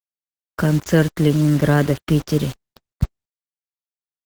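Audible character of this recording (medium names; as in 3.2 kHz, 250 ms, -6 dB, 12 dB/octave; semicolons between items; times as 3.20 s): a quantiser's noise floor 6-bit, dither none; Opus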